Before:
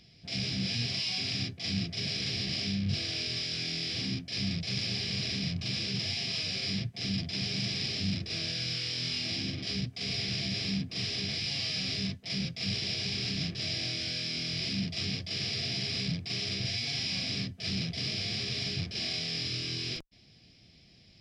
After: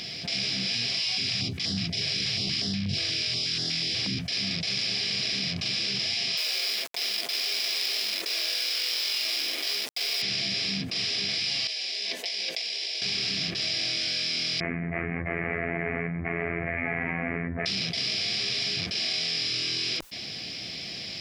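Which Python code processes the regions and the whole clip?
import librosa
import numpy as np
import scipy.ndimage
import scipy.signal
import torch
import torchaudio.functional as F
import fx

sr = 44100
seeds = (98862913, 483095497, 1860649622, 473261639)

y = fx.chain(x, sr, fx.low_shelf(hz=200.0, db=11.5),
    fx.filter_held_notch(hz=8.3, low_hz=220.0, high_hz=2400.0), at=(1.05, 4.29))
y = fx.chain(y, sr, fx.highpass(hz=390.0, slope=24),
    fx.quant_companded(bits=4), at=(6.37, 10.22))
y = fx.chain(y, sr, fx.highpass(hz=390.0, slope=24),
    fx.peak_eq(hz=1300.0, db=-13.0, octaves=0.4),
    fx.over_compress(threshold_db=-45.0, ratio=-1.0), at=(11.67, 13.02))
y = fx.chain(y, sr, fx.steep_lowpass(hz=2100.0, slope=72),
    fx.robotise(hz=84.7),
    fx.env_flatten(amount_pct=100), at=(14.6, 17.66))
y = fx.highpass(y, sr, hz=580.0, slope=6)
y = fx.env_flatten(y, sr, amount_pct=70)
y = y * librosa.db_to_amplitude(4.0)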